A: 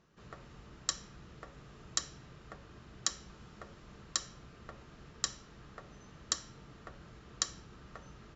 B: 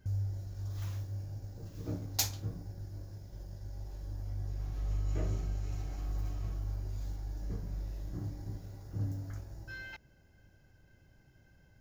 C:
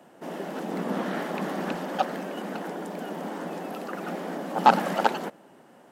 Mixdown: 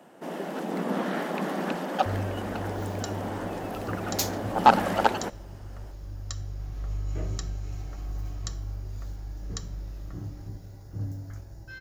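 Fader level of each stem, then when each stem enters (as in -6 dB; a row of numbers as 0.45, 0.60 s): -6.0, +2.0, +0.5 dB; 2.15, 2.00, 0.00 s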